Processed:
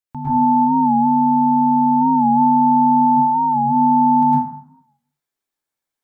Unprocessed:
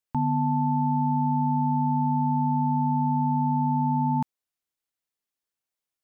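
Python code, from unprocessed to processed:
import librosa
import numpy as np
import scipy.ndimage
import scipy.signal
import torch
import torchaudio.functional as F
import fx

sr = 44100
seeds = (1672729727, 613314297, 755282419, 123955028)

y = fx.lowpass(x, sr, hz=fx.line((0.51, 1000.0), (2.25, 1100.0)), slope=6, at=(0.51, 2.25), fade=0.02)
y = fx.peak_eq(y, sr, hz=310.0, db=-14.0, octaves=1.2, at=(3.05, 3.55), fade=0.02)
y = fx.rev_plate(y, sr, seeds[0], rt60_s=0.75, hf_ratio=0.35, predelay_ms=95, drr_db=-9.5)
y = fx.record_warp(y, sr, rpm=45.0, depth_cents=100.0)
y = y * 10.0 ** (-3.5 / 20.0)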